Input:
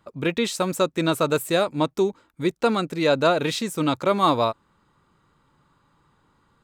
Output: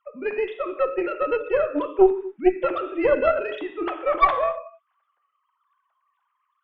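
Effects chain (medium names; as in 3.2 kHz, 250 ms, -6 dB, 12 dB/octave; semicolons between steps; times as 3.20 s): formants replaced by sine waves; gated-style reverb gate 280 ms falling, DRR 5 dB; Chebyshev shaper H 2 -10 dB, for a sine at -4.5 dBFS; trim -1.5 dB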